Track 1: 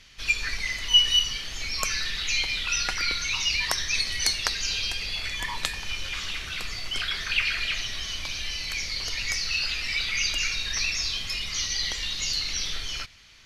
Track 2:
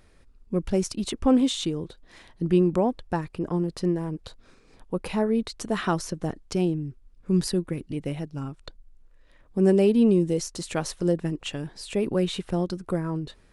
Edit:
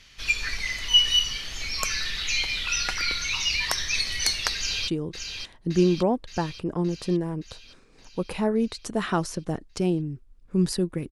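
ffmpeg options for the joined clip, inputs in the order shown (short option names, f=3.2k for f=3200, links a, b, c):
-filter_complex "[0:a]apad=whole_dur=11.11,atrim=end=11.11,atrim=end=4.882[a];[1:a]atrim=start=1.628:end=7.86[b];[a][b]acrossfade=d=0.004:c1=hsin:c2=hsin,asplit=2[c][d];[d]afade=t=in:st=4.56:d=0.01,afade=t=out:st=4.88:d=0.01,aecho=0:1:570|1140|1710|2280|2850|3420|3990|4560|5130:0.446684|0.290344|0.188724|0.12267|0.0797358|0.0518283|0.0336884|0.0218974|0.0142333[e];[c][e]amix=inputs=2:normalize=0"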